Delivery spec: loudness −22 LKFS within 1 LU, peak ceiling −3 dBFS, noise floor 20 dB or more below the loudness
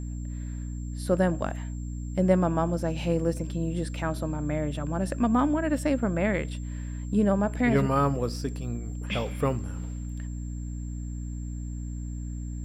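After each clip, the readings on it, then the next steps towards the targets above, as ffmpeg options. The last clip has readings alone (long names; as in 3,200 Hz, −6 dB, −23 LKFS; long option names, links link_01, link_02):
mains hum 60 Hz; hum harmonics up to 300 Hz; level of the hum −32 dBFS; interfering tone 7,400 Hz; level of the tone −53 dBFS; integrated loudness −29.0 LKFS; sample peak −8.5 dBFS; target loudness −22.0 LKFS
→ -af "bandreject=frequency=60:width_type=h:width=4,bandreject=frequency=120:width_type=h:width=4,bandreject=frequency=180:width_type=h:width=4,bandreject=frequency=240:width_type=h:width=4,bandreject=frequency=300:width_type=h:width=4"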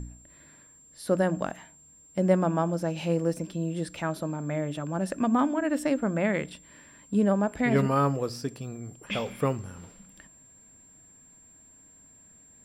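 mains hum none found; interfering tone 7,400 Hz; level of the tone −53 dBFS
→ -af "bandreject=frequency=7400:width=30"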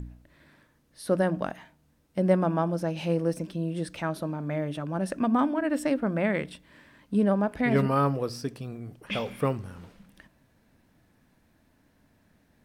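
interfering tone none found; integrated loudness −28.0 LKFS; sample peak −10.0 dBFS; target loudness −22.0 LKFS
→ -af "volume=6dB"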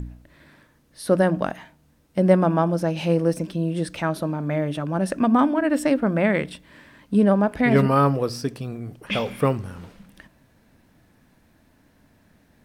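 integrated loudness −22.0 LKFS; sample peak −4.0 dBFS; background noise floor −60 dBFS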